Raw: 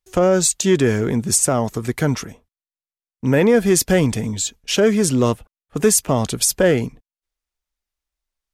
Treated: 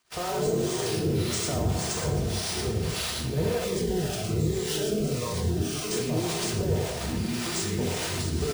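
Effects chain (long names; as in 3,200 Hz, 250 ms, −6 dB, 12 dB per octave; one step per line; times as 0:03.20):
spike at every zero crossing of −19 dBFS
graphic EQ with 10 bands 250 Hz −12 dB, 2,000 Hz −12 dB, 8,000 Hz −8 dB
delay with pitch and tempo change per echo 100 ms, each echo −4 semitones, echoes 3
brickwall limiter −13.5 dBFS, peak gain reduction 7 dB
high-shelf EQ 5,900 Hz −4 dB
echo with shifted repeats 116 ms, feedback 55%, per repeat +46 Hz, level −7 dB
reverb whose tail is shaped and stops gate 430 ms falling, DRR 0 dB
two-band tremolo in antiphase 1.8 Hz, depth 70%, crossover 550 Hz
bad sample-rate conversion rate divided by 3×, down none, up hold
notch comb filter 280 Hz
noise gate −36 dBFS, range −24 dB
0:03.64–0:05.92: phaser whose notches keep moving one way falling 1.3 Hz
level −4 dB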